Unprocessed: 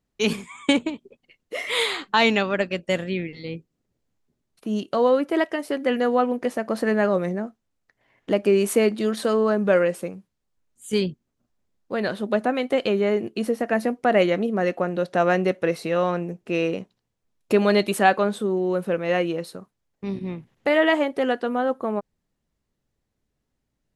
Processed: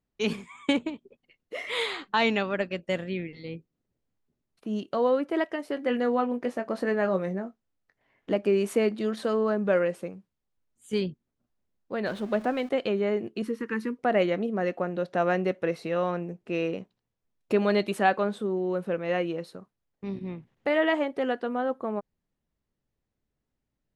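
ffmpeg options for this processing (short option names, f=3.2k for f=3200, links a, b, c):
-filter_complex "[0:a]asettb=1/sr,asplit=3[a][b][c];[a]atrim=end=5.744[d];[b]atrim=start=5.74:end=8.36,asetpts=PTS-STARTPTS,afade=t=in:d=0.004:c=qsin,afade=t=out:st=2.616:d=0.004:c=qsin,asplit=2[e][f];[f]adelay=21,volume=-9.5dB[g];[e][g]amix=inputs=2:normalize=0,atrim=end_sample=115542[h];[c]atrim=start=8.356[i];[d][h]acrossfade=d=0.004:c1=hsin:c2=qsin[j];[j][i]acrossfade=d=0.004:c1=qsin:c2=hsin,asettb=1/sr,asplit=3[k][l][m];[k]atrim=end=12.064[n];[l]atrim=start=12.06:end=12.69,asetpts=PTS-STARTPTS,afade=t=in:d=0.004:c=qsin,afade=t=out:st=0.626:d=0.004:c=qsin,aeval=exprs='val(0)+0.5*0.0168*sgn(val(0))':c=same[o];[m]atrim=start=12.686[p];[n][o]acrossfade=d=0.004:c1=hsin:c2=qsin[q];[q][p]acrossfade=d=0.004:c1=qsin:c2=hsin,asettb=1/sr,asplit=3[r][s][t];[r]atrim=end=13.424[u];[s]atrim=start=13.42:end=13.99,asetpts=PTS-STARTPTS,afade=t=in:d=0.004:c=qsin,afade=t=out:st=0.566:d=0.004:c=qsin,asuperstop=centerf=660:order=8:qfactor=1.4[v];[t]atrim=start=13.986[w];[u][v]acrossfade=d=0.004:c1=hsin:c2=qsin[x];[x][w]acrossfade=d=0.004:c1=qsin:c2=hsin,highshelf=f=6.7k:g=-11,volume=-5dB"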